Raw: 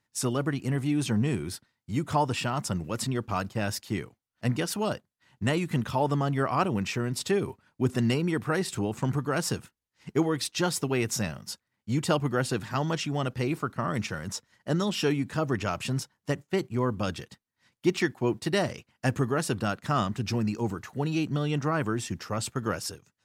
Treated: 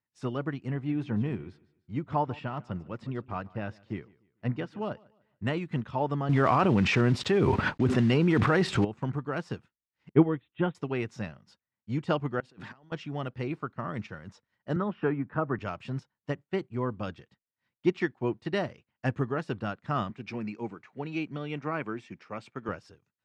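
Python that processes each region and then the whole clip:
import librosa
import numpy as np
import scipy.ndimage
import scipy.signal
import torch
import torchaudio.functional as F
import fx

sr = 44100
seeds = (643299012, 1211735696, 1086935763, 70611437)

y = fx.chain(x, sr, fx.lowpass(hz=2700.0, slope=6),
    fx.echo_feedback(ms=148, feedback_pct=35, wet_db=-17), at=(0.74, 5.45))
y = fx.chain(y, sr, fx.block_float(bits=5),
    fx.env_flatten(amount_pct=100), at=(6.29, 8.85))
y = fx.chain(y, sr, fx.steep_lowpass(hz=3600.0, slope=96),
    fx.low_shelf(hz=410.0, db=7.5),
    fx.upward_expand(threshold_db=-41.0, expansion=1.5), at=(10.09, 10.75))
y = fx.chain(y, sr, fx.highpass(hz=150.0, slope=12),
    fx.over_compress(threshold_db=-41.0, ratio=-1.0), at=(12.4, 12.92))
y = fx.chain(y, sr, fx.lowpass_res(hz=1400.0, q=1.6),
    fx.band_squash(depth_pct=40), at=(14.76, 15.59))
y = fx.chain(y, sr, fx.highpass(hz=170.0, slope=12),
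    fx.peak_eq(hz=2300.0, db=11.0, octaves=0.22), at=(20.1, 22.69))
y = scipy.signal.sosfilt(scipy.signal.butter(2, 3100.0, 'lowpass', fs=sr, output='sos'), y)
y = fx.upward_expand(y, sr, threshold_db=-44.0, expansion=1.5)
y = F.gain(torch.from_numpy(y), 1.0).numpy()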